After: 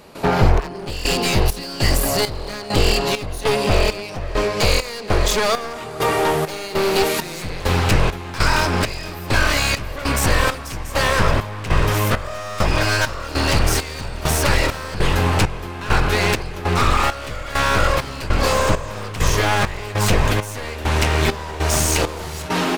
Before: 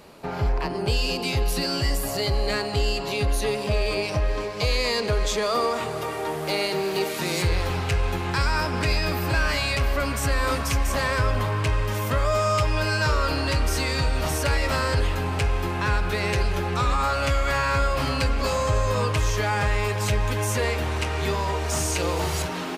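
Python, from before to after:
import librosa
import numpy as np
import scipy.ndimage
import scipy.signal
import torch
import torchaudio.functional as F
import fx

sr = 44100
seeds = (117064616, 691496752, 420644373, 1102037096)

y = np.minimum(x, 2.0 * 10.0 ** (-25.0 / 20.0) - x)
y = fx.rider(y, sr, range_db=10, speed_s=0.5)
y = fx.step_gate(y, sr, bpm=100, pattern='.xxx...xxx.', floor_db=-12.0, edge_ms=4.5)
y = y * 10.0 ** (9.0 / 20.0)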